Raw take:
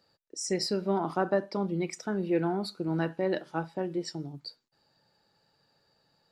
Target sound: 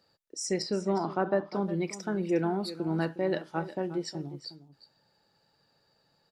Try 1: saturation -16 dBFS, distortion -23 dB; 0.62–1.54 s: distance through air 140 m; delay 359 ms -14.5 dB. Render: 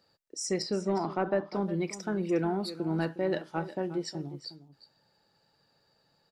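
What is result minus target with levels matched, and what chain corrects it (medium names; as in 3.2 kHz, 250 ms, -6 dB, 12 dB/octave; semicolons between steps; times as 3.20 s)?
saturation: distortion +21 dB
saturation -4.5 dBFS, distortion -44 dB; 0.62–1.54 s: distance through air 140 m; delay 359 ms -14.5 dB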